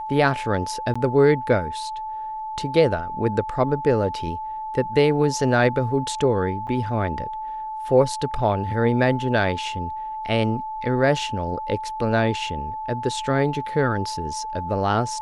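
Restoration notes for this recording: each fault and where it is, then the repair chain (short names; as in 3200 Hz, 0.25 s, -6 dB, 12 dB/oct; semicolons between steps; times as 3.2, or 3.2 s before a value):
tone 870 Hz -28 dBFS
0.94–0.95 gap 15 ms
6.67–6.68 gap 7.5 ms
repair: notch 870 Hz, Q 30; interpolate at 0.94, 15 ms; interpolate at 6.67, 7.5 ms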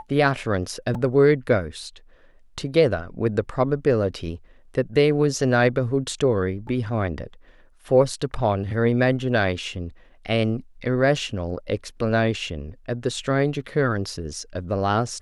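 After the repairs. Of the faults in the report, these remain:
none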